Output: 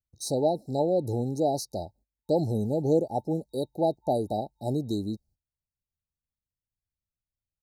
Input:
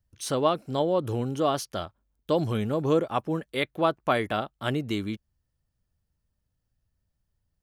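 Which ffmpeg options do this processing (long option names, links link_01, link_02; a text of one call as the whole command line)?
ffmpeg -i in.wav -af "afftfilt=real='re*(1-between(b*sr/4096,890,3800))':imag='im*(1-between(b*sr/4096,890,3800))':win_size=4096:overlap=0.75,agate=range=-18dB:threshold=-57dB:ratio=16:detection=peak" out.wav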